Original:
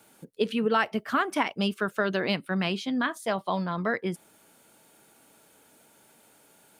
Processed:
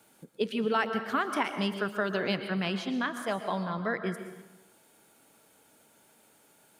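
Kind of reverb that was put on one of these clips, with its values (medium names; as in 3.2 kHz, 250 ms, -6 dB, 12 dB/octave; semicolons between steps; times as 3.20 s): plate-style reverb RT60 1.1 s, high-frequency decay 0.75×, pre-delay 105 ms, DRR 8 dB; trim -3.5 dB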